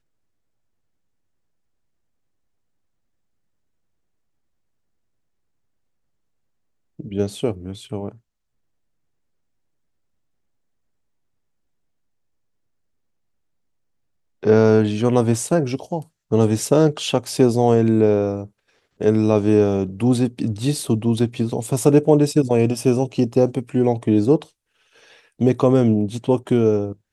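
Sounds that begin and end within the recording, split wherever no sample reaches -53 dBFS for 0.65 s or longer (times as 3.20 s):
6.99–8.19 s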